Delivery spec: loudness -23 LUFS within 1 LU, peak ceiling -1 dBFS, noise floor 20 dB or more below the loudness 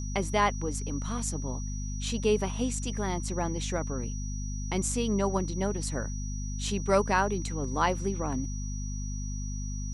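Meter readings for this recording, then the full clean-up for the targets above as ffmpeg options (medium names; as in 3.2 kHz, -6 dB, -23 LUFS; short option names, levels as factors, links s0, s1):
hum 50 Hz; highest harmonic 250 Hz; hum level -32 dBFS; steady tone 5.8 kHz; tone level -43 dBFS; loudness -31.0 LUFS; peak level -12.0 dBFS; loudness target -23.0 LUFS
-> -af "bandreject=f=50:t=h:w=4,bandreject=f=100:t=h:w=4,bandreject=f=150:t=h:w=4,bandreject=f=200:t=h:w=4,bandreject=f=250:t=h:w=4"
-af "bandreject=f=5800:w=30"
-af "volume=2.51"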